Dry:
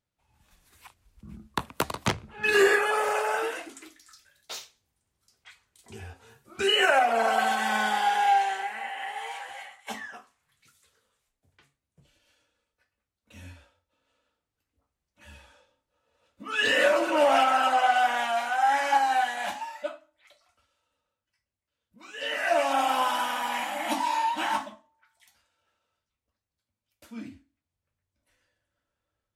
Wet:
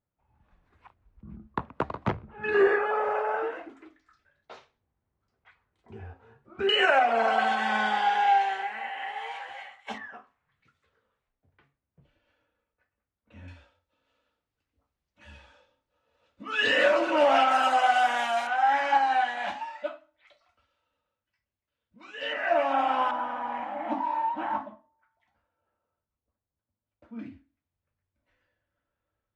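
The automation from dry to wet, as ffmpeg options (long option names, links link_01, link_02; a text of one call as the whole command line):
ffmpeg -i in.wav -af "asetnsamples=nb_out_samples=441:pad=0,asendcmd='6.69 lowpass f 3800;9.98 lowpass f 1900;13.48 lowpass f 4700;17.51 lowpass f 9100;18.47 lowpass f 3500;22.33 lowpass f 2100;23.11 lowpass f 1100;27.19 lowpass f 2500',lowpass=1400" out.wav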